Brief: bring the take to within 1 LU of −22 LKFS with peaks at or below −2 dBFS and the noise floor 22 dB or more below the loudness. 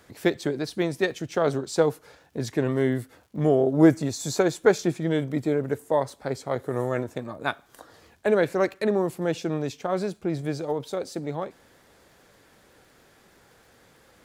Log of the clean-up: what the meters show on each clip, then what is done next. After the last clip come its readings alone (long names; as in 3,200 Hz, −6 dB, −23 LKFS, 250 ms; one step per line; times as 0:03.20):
crackle rate 55 per second; integrated loudness −26.0 LKFS; sample peak −5.0 dBFS; target loudness −22.0 LKFS
→ click removal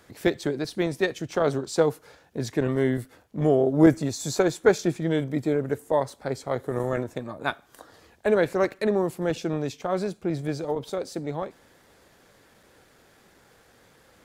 crackle rate 0.14 per second; integrated loudness −26.0 LKFS; sample peak −5.0 dBFS; target loudness −22.0 LKFS
→ level +4 dB
brickwall limiter −2 dBFS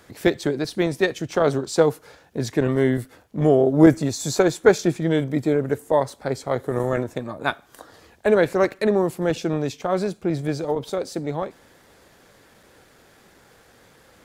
integrated loudness −22.0 LKFS; sample peak −2.0 dBFS; background noise floor −55 dBFS